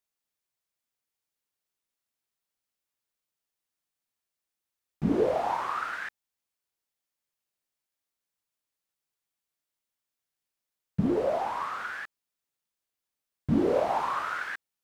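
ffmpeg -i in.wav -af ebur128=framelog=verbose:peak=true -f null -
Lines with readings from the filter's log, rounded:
Integrated loudness:
  I:         -29.2 LUFS
  Threshold: -39.6 LUFS
Loudness range:
  LRA:         8.4 LU
  Threshold: -53.6 LUFS
  LRA low:   -39.5 LUFS
  LRA high:  -31.1 LUFS
True peak:
  Peak:      -14.4 dBFS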